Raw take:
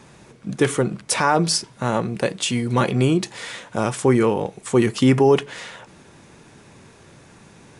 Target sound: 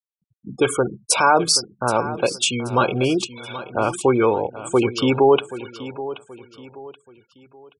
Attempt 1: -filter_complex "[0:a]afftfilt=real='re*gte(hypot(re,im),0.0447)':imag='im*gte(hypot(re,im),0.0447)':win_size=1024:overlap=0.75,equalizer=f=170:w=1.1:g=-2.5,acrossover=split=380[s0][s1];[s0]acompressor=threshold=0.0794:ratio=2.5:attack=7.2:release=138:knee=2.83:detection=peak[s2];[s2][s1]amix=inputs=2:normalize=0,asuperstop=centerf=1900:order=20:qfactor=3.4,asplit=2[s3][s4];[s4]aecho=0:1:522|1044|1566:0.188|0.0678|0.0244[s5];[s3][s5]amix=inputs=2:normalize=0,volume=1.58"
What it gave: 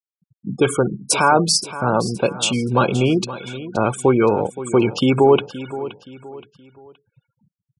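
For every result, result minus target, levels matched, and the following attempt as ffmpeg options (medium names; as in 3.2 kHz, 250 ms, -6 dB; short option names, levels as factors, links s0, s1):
echo 256 ms early; 125 Hz band +4.0 dB
-filter_complex "[0:a]afftfilt=real='re*gte(hypot(re,im),0.0447)':imag='im*gte(hypot(re,im),0.0447)':win_size=1024:overlap=0.75,equalizer=f=170:w=1.1:g=-2.5,acrossover=split=380[s0][s1];[s0]acompressor=threshold=0.0794:ratio=2.5:attack=7.2:release=138:knee=2.83:detection=peak[s2];[s2][s1]amix=inputs=2:normalize=0,asuperstop=centerf=1900:order=20:qfactor=3.4,asplit=2[s3][s4];[s4]aecho=0:1:778|1556|2334:0.188|0.0678|0.0244[s5];[s3][s5]amix=inputs=2:normalize=0,volume=1.58"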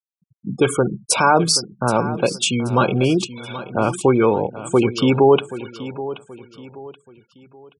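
125 Hz band +4.0 dB
-filter_complex "[0:a]afftfilt=real='re*gte(hypot(re,im),0.0447)':imag='im*gte(hypot(re,im),0.0447)':win_size=1024:overlap=0.75,equalizer=f=170:w=1.1:g=-13,acrossover=split=380[s0][s1];[s0]acompressor=threshold=0.0794:ratio=2.5:attack=7.2:release=138:knee=2.83:detection=peak[s2];[s2][s1]amix=inputs=2:normalize=0,asuperstop=centerf=1900:order=20:qfactor=3.4,asplit=2[s3][s4];[s4]aecho=0:1:778|1556|2334:0.188|0.0678|0.0244[s5];[s3][s5]amix=inputs=2:normalize=0,volume=1.58"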